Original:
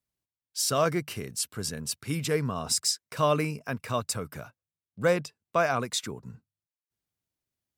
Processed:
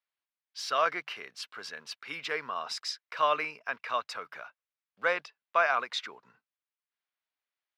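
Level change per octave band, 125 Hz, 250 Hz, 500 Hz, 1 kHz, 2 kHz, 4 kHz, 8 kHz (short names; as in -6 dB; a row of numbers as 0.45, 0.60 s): -28.5, -18.0, -6.5, +1.5, +3.0, -4.0, -16.5 dB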